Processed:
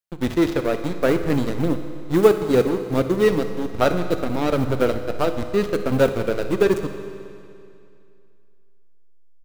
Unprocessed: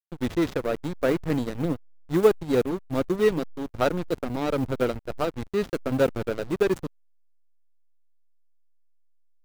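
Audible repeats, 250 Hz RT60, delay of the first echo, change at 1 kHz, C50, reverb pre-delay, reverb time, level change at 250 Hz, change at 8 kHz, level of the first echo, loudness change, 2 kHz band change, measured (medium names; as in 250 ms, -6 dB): 1, 2.5 s, 62 ms, +5.0 dB, 8.5 dB, 10 ms, 2.5 s, +5.0 dB, +5.0 dB, -17.0 dB, +5.0 dB, +5.0 dB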